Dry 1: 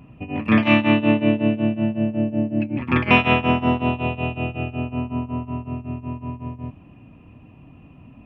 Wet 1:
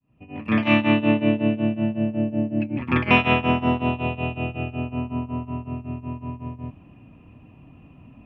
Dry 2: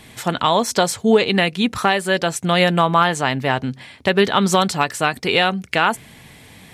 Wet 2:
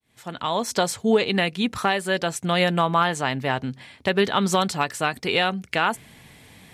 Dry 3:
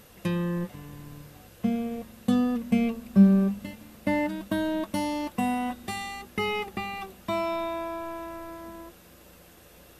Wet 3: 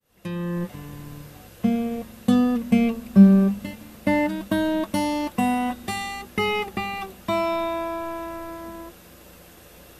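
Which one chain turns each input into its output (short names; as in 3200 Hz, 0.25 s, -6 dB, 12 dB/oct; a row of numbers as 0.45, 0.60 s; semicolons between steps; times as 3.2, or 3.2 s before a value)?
opening faded in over 0.76 s; match loudness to -23 LUFS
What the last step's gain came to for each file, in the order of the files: -1.5, -5.0, +5.0 dB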